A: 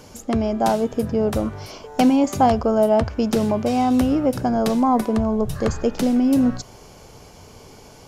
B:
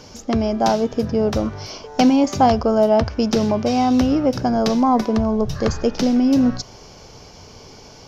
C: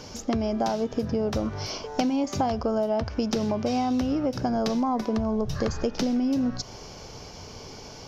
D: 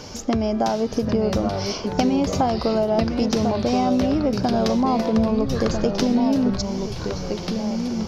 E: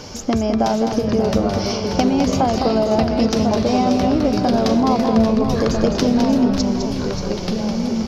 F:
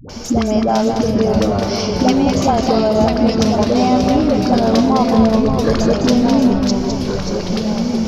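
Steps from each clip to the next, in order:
resonant high shelf 7.1 kHz -9 dB, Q 3; trim +1.5 dB
compression, threshold -23 dBFS, peak gain reduction 12.5 dB
ever faster or slower copies 752 ms, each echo -2 st, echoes 3, each echo -6 dB; trim +4.5 dB
multi-tap echo 208/584 ms -6.5/-9.5 dB; trim +2.5 dB
phase dispersion highs, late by 94 ms, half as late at 460 Hz; trim +3 dB

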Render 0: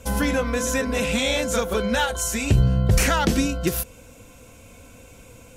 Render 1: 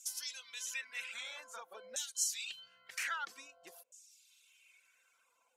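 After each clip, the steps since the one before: differentiator; LFO band-pass saw down 0.51 Hz 570–6700 Hz; reverb removal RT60 0.9 s; trim +2 dB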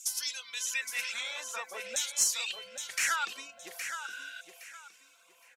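in parallel at -8 dB: one-sided clip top -35 dBFS; on the sum: feedback delay 816 ms, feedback 26%, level -8 dB; spectral replace 4.06–4.38 s, 1.4–5 kHz before; trim +5 dB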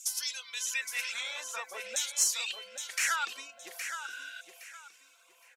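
peaking EQ 120 Hz -10 dB 1.9 oct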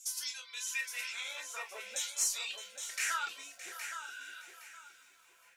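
on a send at -1.5 dB: reverberation, pre-delay 3 ms; on the sum: bit-crushed delay 616 ms, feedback 35%, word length 9-bit, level -14 dB; trim -6.5 dB

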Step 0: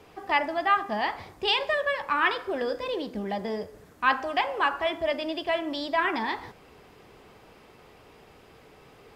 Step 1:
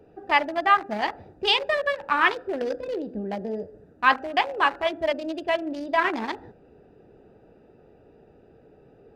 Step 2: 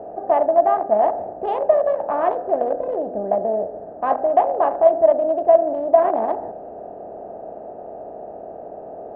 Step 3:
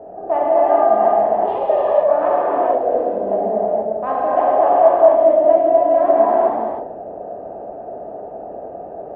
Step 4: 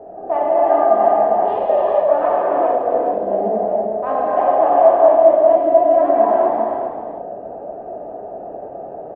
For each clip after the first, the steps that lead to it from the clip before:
local Wiener filter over 41 samples; bass shelf 180 Hz -7 dB; trim +5 dB
spectral levelling over time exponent 0.6; resonant low-pass 670 Hz, resonance Q 6.1; trim -4 dB
gated-style reverb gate 500 ms flat, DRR -7 dB; trim -4 dB
flange 0.51 Hz, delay 2.4 ms, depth 5.3 ms, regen +74%; delay 401 ms -8 dB; trim +4 dB

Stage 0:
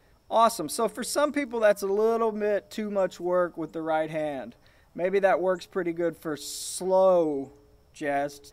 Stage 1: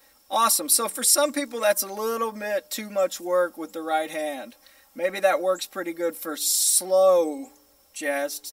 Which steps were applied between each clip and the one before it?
RIAA curve recording; comb 3.7 ms, depth 92%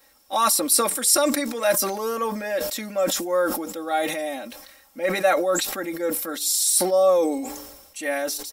decay stretcher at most 49 dB/s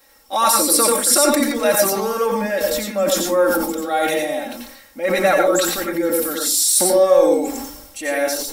in parallel at -10.5 dB: saturation -17.5 dBFS, distortion -13 dB; on the sum: reverberation RT60 0.30 s, pre-delay 85 ms, DRR 1 dB; trim +1 dB

